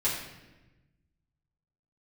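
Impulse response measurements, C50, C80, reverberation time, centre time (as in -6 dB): 3.5 dB, 5.5 dB, 1.1 s, 49 ms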